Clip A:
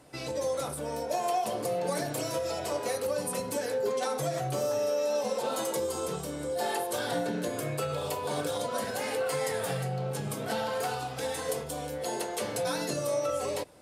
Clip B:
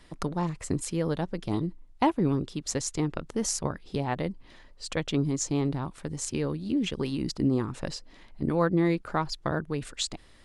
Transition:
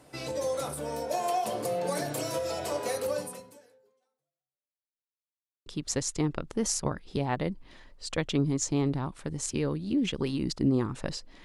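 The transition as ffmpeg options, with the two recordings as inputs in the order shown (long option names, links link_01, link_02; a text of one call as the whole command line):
ffmpeg -i cue0.wav -i cue1.wav -filter_complex "[0:a]apad=whole_dur=11.44,atrim=end=11.44,asplit=2[link_01][link_02];[link_01]atrim=end=5.01,asetpts=PTS-STARTPTS,afade=type=out:start_time=3.16:duration=1.85:curve=exp[link_03];[link_02]atrim=start=5.01:end=5.66,asetpts=PTS-STARTPTS,volume=0[link_04];[1:a]atrim=start=2.45:end=8.23,asetpts=PTS-STARTPTS,afade=type=in:duration=0.004:curve=hsin[link_05];[link_03][link_04][link_05]concat=n=3:v=0:a=1" out.wav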